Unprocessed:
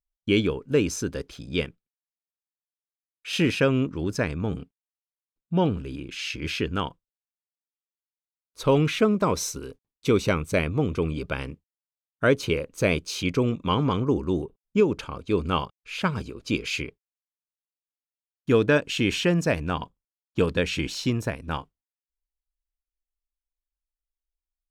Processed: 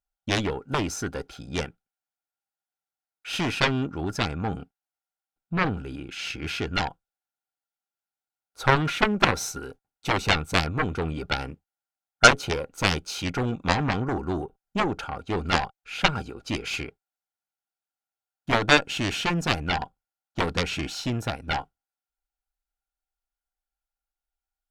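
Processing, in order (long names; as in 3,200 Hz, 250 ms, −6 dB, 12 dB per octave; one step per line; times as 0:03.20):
hollow resonant body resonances 780/1,400 Hz, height 17 dB, ringing for 35 ms
harmonic generator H 6 −19 dB, 7 −11 dB, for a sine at −1 dBFS
level −1 dB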